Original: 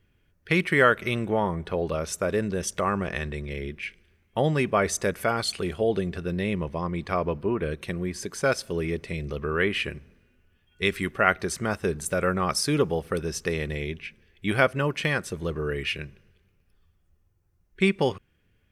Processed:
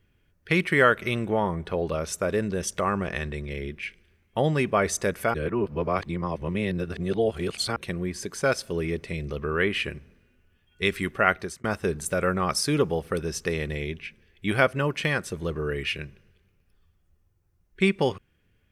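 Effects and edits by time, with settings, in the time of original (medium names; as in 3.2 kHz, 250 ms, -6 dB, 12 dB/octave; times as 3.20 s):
5.34–7.76 s: reverse
11.20–11.64 s: fade out equal-power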